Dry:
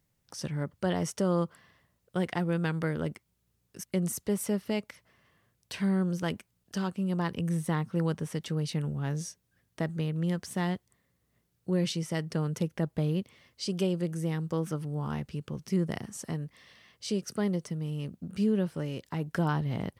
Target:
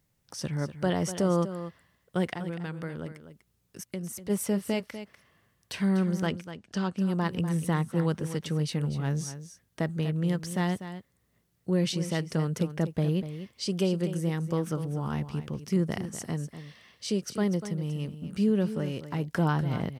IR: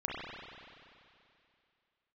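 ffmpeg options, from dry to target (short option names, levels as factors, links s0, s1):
-filter_complex "[0:a]asplit=3[s0][s1][s2];[s0]afade=t=out:st=2.33:d=0.02[s3];[s1]acompressor=threshold=0.00794:ratio=2,afade=t=in:st=2.33:d=0.02,afade=t=out:st=4.29:d=0.02[s4];[s2]afade=t=in:st=4.29:d=0.02[s5];[s3][s4][s5]amix=inputs=3:normalize=0,asettb=1/sr,asplit=3[s6][s7][s8];[s6]atrim=end=6.264[s9];[s7]atrim=start=6.26:end=6.97,asetpts=PTS-STARTPTS,afade=t=in:d=0.004:c=qsin,afade=t=out:st=0.706:d=0.004:c=qsin,lowpass=6300[s10];[s8]atrim=start=6.966[s11];[s9][s10]acrossfade=d=0.004:c1=hsin:c2=qsin[s12];[s12][s11]acrossfade=d=0.004:c1=qsin:c2=hsin,aecho=1:1:245:0.266,volume=1.26"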